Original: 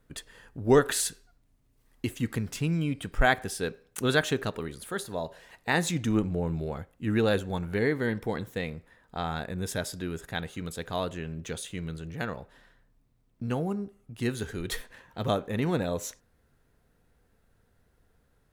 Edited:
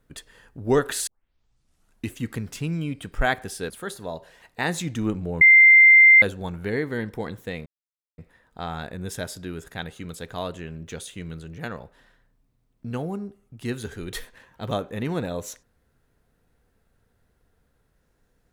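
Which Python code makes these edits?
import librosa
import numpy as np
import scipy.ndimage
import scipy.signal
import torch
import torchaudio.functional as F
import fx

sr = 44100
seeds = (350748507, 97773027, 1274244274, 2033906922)

y = fx.edit(x, sr, fx.tape_start(start_s=1.07, length_s=1.06),
    fx.cut(start_s=3.7, length_s=1.09),
    fx.bleep(start_s=6.5, length_s=0.81, hz=2090.0, db=-8.5),
    fx.insert_silence(at_s=8.75, length_s=0.52), tone=tone)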